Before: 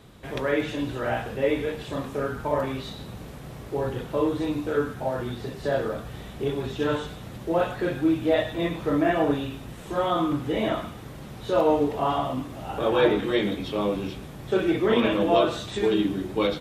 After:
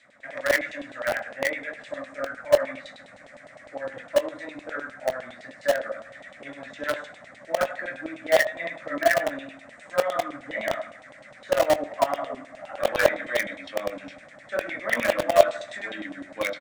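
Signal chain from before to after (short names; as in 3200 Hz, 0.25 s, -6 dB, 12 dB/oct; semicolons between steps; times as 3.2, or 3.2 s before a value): EQ curve 180 Hz 0 dB, 280 Hz +7 dB, 400 Hz -18 dB, 580 Hz +11 dB, 920 Hz -11 dB, 2000 Hz +9 dB, 2900 Hz -9 dB, 8600 Hz +11 dB, 14000 Hz -24 dB; painted sound fall, 11.98–12.39, 360–1100 Hz -34 dBFS; LFO band-pass saw down 9.8 Hz 720–3500 Hz; in parallel at -6 dB: bit-crush 4-bit; on the sum: doubler 22 ms -14 dB; on a send: narrowing echo 78 ms, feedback 64%, band-pass 670 Hz, level -21.5 dB; on the sum: gain +4.5 dB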